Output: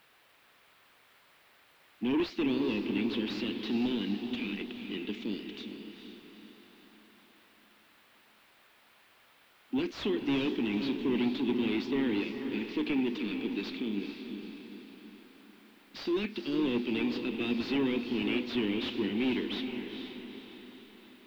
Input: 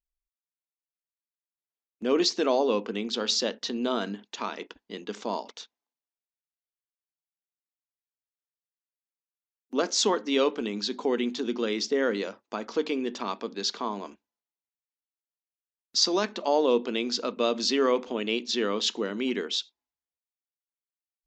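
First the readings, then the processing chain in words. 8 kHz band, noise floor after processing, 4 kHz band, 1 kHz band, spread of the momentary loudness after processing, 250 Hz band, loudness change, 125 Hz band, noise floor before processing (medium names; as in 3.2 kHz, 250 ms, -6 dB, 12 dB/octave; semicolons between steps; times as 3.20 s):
under -25 dB, -63 dBFS, -9.0 dB, -12.5 dB, 17 LU, +1.5 dB, -5.0 dB, no reading, under -85 dBFS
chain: Chebyshev band-stop 320–2400 Hz, order 3; overdrive pedal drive 29 dB, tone 6.6 kHz, clips at -10.5 dBFS; added noise blue -35 dBFS; distance through air 500 m; echo that smears into a reverb 455 ms, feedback 49%, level -7 dB; trim -8 dB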